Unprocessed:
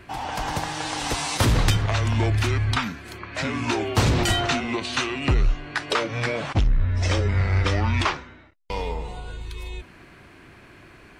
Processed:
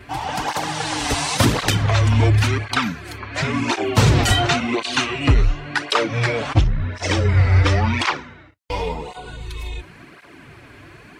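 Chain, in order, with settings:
convolution reverb, pre-delay 7 ms, DRR 19.5 dB
through-zero flanger with one copy inverted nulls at 0.93 Hz, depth 6.3 ms
level +7.5 dB

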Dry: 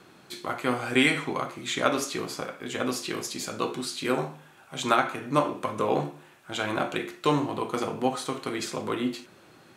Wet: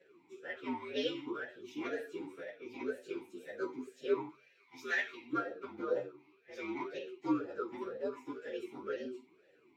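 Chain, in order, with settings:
partials spread apart or drawn together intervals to 120%
0:04.29–0:05.33: tilt shelving filter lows −8 dB, about 1,300 Hz
formant filter swept between two vowels e-u 2 Hz
level +3.5 dB

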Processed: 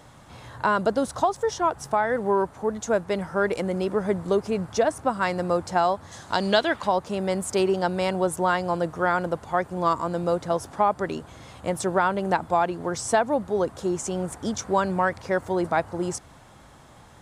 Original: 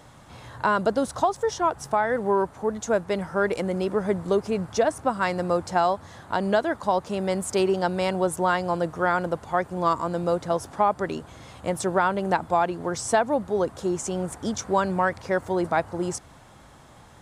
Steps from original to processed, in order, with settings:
0:06.11–0:06.87: parametric band 7,500 Hz → 2,400 Hz +14 dB 1.4 octaves

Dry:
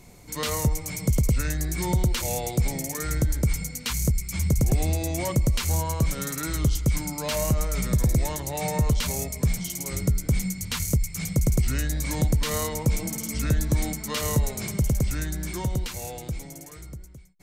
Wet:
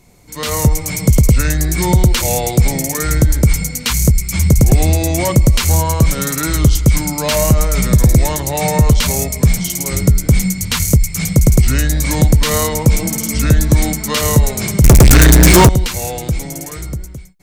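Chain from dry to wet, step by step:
0:14.84–0:15.69: leveller curve on the samples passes 5
automatic gain control gain up to 16 dB

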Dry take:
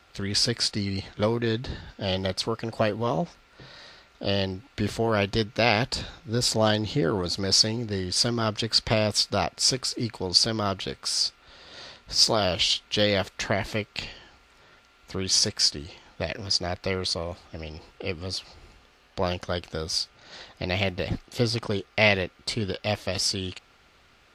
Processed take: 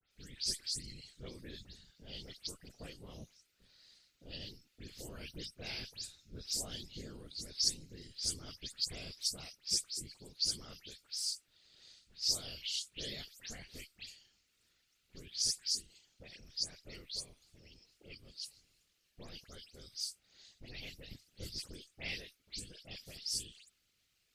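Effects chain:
every frequency bin delayed by itself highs late, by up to 113 ms
RIAA equalisation recording
random phases in short frames
guitar amp tone stack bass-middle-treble 10-0-1
level +1 dB

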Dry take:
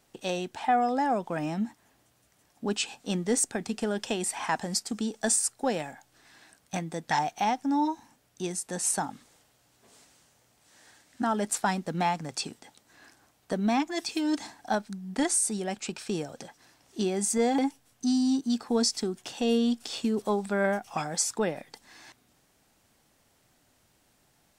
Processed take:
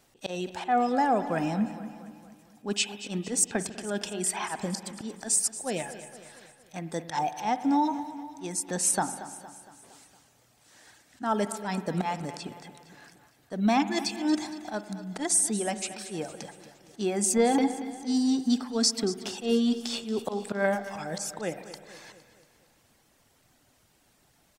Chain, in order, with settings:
reverb reduction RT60 0.64 s
volume swells 131 ms
repeating echo 231 ms, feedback 54%, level −14.5 dB
spring reverb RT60 1.8 s, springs 49 ms, chirp 70 ms, DRR 12.5 dB
level +3 dB

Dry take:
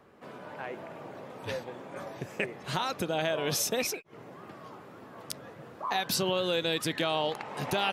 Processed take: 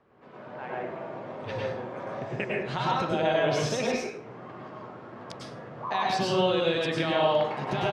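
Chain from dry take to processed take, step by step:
high-shelf EQ 8,800 Hz −9.5 dB
automatic gain control gain up to 5.5 dB
high-frequency loss of the air 100 metres
single-tap delay 106 ms −21 dB
dense smooth reverb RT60 0.62 s, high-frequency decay 0.6×, pre-delay 90 ms, DRR −4 dB
level −6 dB

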